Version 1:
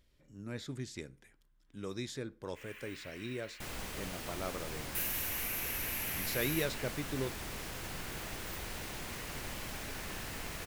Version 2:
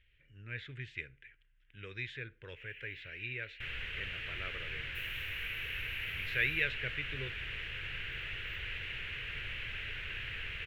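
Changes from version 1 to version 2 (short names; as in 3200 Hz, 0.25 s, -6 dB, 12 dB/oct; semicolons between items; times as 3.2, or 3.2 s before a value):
first sound: add differentiator; master: add EQ curve 120 Hz 0 dB, 190 Hz -14 dB, 270 Hz -16 dB, 450 Hz -6 dB, 750 Hz -18 dB, 1100 Hz -12 dB, 1600 Hz +7 dB, 2800 Hz +12 dB, 4900 Hz -19 dB, 10000 Hz -28 dB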